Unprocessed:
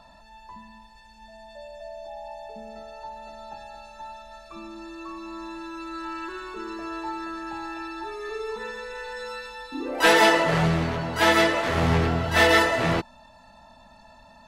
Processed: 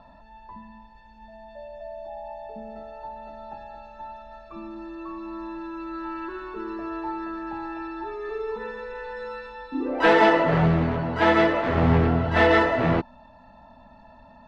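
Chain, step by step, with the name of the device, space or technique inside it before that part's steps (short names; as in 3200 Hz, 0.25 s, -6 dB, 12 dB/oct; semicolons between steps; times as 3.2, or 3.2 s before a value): phone in a pocket (LPF 3700 Hz 12 dB/oct; bell 260 Hz +4 dB 0.29 oct; high shelf 2100 Hz -11 dB); gain +2.5 dB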